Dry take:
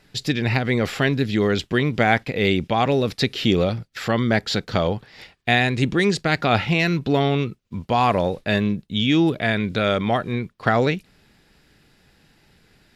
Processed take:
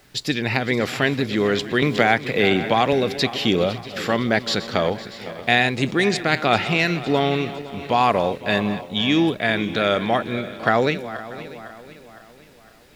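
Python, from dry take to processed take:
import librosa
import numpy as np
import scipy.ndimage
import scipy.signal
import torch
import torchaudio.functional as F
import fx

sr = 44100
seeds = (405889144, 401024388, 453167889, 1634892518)

p1 = fx.reverse_delay_fb(x, sr, ms=254, feedback_pct=67, wet_db=-14)
p2 = fx.highpass(p1, sr, hz=240.0, slope=6)
p3 = fx.dmg_noise_colour(p2, sr, seeds[0], colour='pink', level_db=-58.0)
p4 = p3 + fx.echo_single(p3, sr, ms=638, db=-21.0, dry=0)
p5 = fx.band_squash(p4, sr, depth_pct=70, at=(1.82, 2.93))
y = F.gain(torch.from_numpy(p5), 1.5).numpy()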